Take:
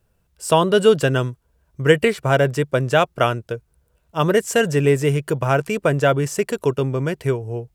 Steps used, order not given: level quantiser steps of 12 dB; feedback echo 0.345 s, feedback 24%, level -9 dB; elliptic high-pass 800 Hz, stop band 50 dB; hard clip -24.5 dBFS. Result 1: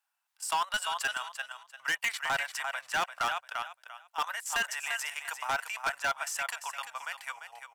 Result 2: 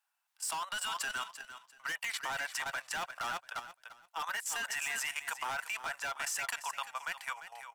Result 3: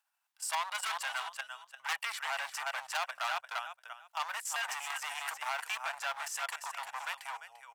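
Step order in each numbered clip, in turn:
elliptic high-pass > level quantiser > feedback echo > hard clip; elliptic high-pass > hard clip > feedback echo > level quantiser; feedback echo > level quantiser > hard clip > elliptic high-pass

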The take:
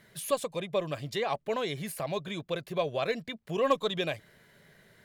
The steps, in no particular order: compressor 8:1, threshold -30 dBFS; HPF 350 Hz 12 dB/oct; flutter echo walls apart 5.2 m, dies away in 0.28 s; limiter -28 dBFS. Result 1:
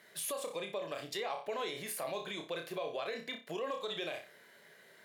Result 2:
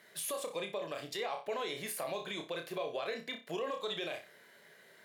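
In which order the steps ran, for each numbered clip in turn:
flutter echo > compressor > limiter > HPF; HPF > compressor > flutter echo > limiter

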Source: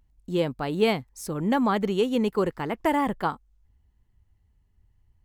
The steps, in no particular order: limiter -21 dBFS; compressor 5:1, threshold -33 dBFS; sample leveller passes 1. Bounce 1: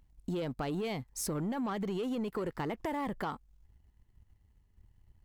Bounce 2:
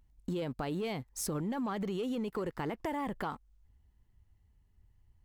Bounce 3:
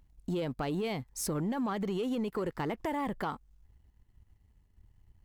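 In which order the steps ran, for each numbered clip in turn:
limiter > sample leveller > compressor; sample leveller > limiter > compressor; limiter > compressor > sample leveller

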